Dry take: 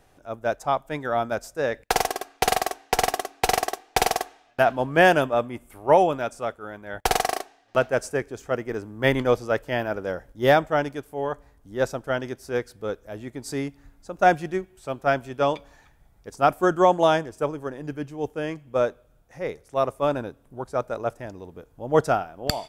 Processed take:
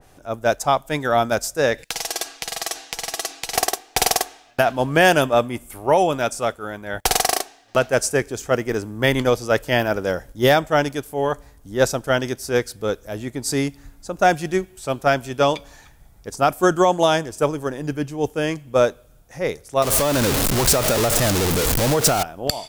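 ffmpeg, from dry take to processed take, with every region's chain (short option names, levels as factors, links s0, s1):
-filter_complex "[0:a]asettb=1/sr,asplit=3[s0][s1][s2];[s0]atrim=end=1.784[s3];[s1]atrim=start=1.78:end=3.55,asetpts=PTS-STARTPTS,afade=t=in:d=0.004:c=qsin,afade=t=out:st=1.766:d=0.004:c=qsin,equalizer=f=4900:w=0.39:g=9,aecho=1:1:6.1:0.59,atrim=end_sample=78057,acompressor=threshold=0.0398:ratio=16:attack=3.2:release=140:knee=1:detection=peak[s4];[s2]atrim=start=3.546[s5];[s3][s4]acrossfade=d=0.004:c1=hsin:c2=qsin[s6];[s6][s5]acrossfade=d=0.004:c1=qsin:c2=hsin,asettb=1/sr,asplit=3[s7][s8][s9];[s7]atrim=end=19.824[s10];[s8]atrim=start=19.82:end=22.23,asetpts=PTS-STARTPTS,afade=t=in:d=0.004:c=qsin,afade=t=out:st=2.406:d=0.004:c=qsin,aeval=exprs='val(0)+0.5*0.075*sgn(val(0))':c=same,acompressor=threshold=0.0794:ratio=6:attack=3.2:release=140:knee=1:detection=peak[s11];[s9]atrim=start=22.226[s12];[s10][s11]acrossfade=d=0.004:c1=hsin:c2=qsin[s13];[s13][s12]acrossfade=d=0.004:c1=qsin:c2=hsin,bass=f=250:g=2,treble=f=4000:g=5,alimiter=limit=0.251:level=0:latency=1:release=322,adynamicequalizer=threshold=0.0112:dfrequency=2300:dqfactor=0.7:tfrequency=2300:tqfactor=0.7:attack=5:release=100:ratio=0.375:range=2.5:mode=boostabove:tftype=highshelf,volume=2"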